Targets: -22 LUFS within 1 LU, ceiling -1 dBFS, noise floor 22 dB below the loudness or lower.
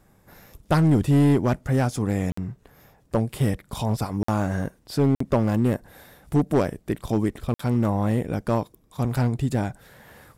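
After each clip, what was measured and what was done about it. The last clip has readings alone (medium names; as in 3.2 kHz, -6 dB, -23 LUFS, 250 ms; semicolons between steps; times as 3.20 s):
clipped samples 1.4%; clipping level -13.0 dBFS; dropouts 4; longest dropout 54 ms; loudness -24.0 LUFS; peak level -13.0 dBFS; loudness target -22.0 LUFS
-> clip repair -13 dBFS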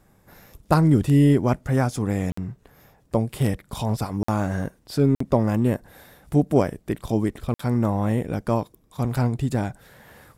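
clipped samples 0.0%; dropouts 4; longest dropout 54 ms
-> interpolate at 2.32/4.23/5.15/7.54 s, 54 ms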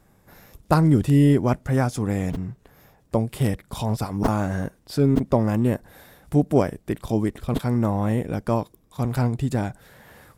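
dropouts 0; loudness -23.0 LUFS; peak level -4.0 dBFS; loudness target -22.0 LUFS
-> trim +1 dB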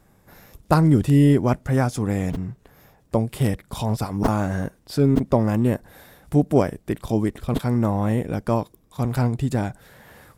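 loudness -22.0 LUFS; peak level -3.0 dBFS; noise floor -58 dBFS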